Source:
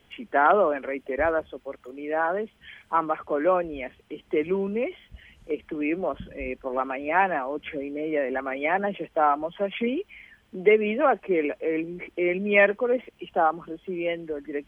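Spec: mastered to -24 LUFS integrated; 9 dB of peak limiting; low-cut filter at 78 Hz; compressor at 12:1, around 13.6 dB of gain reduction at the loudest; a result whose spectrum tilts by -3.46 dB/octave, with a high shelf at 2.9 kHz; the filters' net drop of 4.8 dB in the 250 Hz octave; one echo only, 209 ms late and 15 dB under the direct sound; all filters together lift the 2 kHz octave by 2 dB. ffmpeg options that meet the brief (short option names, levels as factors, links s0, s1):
-af "highpass=78,equalizer=f=250:t=o:g=-7,equalizer=f=2000:t=o:g=4.5,highshelf=f=2900:g=-5.5,acompressor=threshold=0.0447:ratio=12,alimiter=level_in=1.19:limit=0.0631:level=0:latency=1,volume=0.841,aecho=1:1:209:0.178,volume=3.98"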